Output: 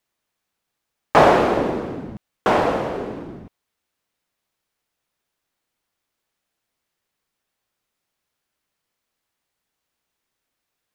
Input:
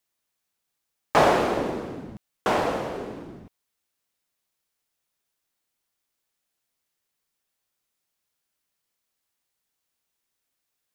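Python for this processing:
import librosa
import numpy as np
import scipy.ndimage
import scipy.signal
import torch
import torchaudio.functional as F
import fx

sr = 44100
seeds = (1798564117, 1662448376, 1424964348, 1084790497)

y = fx.high_shelf(x, sr, hz=4300.0, db=-9.0)
y = y * 10.0 ** (6.0 / 20.0)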